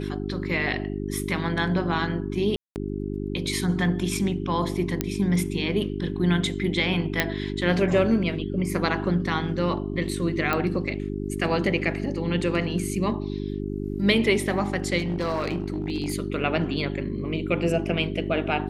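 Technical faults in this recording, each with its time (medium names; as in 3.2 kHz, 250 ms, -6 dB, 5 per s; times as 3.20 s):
hum 50 Hz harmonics 8 -30 dBFS
2.56–2.76 s: dropout 199 ms
5.01 s: pop -8 dBFS
7.20 s: pop -5 dBFS
10.53 s: pop -10 dBFS
14.98–16.14 s: clipped -21.5 dBFS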